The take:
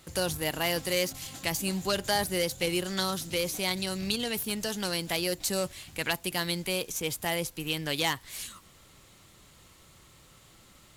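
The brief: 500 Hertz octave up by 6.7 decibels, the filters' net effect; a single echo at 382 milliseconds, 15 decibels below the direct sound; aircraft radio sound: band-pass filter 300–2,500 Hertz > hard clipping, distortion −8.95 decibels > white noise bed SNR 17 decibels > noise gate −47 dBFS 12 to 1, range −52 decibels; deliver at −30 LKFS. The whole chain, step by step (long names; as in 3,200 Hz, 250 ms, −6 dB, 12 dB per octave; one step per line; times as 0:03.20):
band-pass filter 300–2,500 Hz
parametric band 500 Hz +8.5 dB
single-tap delay 382 ms −15 dB
hard clipping −25.5 dBFS
white noise bed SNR 17 dB
noise gate −47 dBFS 12 to 1, range −52 dB
level +2 dB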